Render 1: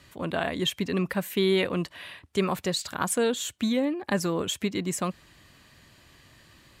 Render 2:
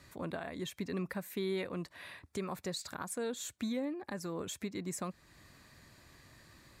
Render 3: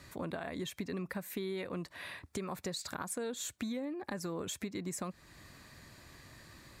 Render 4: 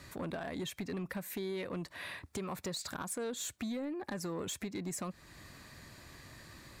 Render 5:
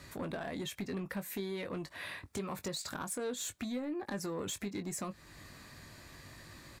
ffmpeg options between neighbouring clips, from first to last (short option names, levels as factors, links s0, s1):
-af "acompressor=threshold=0.00794:ratio=1.5,equalizer=f=3000:w=4.8:g=-11,alimiter=level_in=1.06:limit=0.0631:level=0:latency=1:release=425,volume=0.944,volume=0.708"
-af "acompressor=threshold=0.0112:ratio=6,volume=1.58"
-af "asoftclip=type=tanh:threshold=0.0211,volume=1.26"
-filter_complex "[0:a]asplit=2[s0][s1];[s1]adelay=20,volume=0.335[s2];[s0][s2]amix=inputs=2:normalize=0"